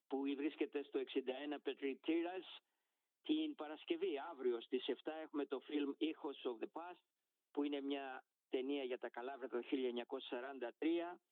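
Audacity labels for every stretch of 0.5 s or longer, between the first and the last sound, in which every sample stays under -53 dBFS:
2.580000	3.260000	silence
6.930000	7.550000	silence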